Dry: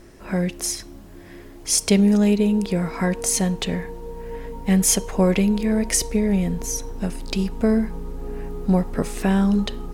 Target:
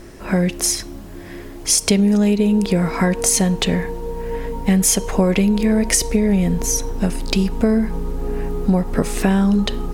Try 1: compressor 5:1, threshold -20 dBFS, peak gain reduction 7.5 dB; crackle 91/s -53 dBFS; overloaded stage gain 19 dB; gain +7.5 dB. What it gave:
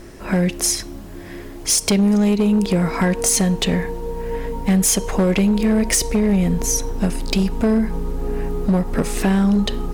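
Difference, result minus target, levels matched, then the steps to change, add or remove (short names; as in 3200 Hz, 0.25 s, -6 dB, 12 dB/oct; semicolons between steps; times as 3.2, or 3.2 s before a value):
overloaded stage: distortion +34 dB
change: overloaded stage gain 9 dB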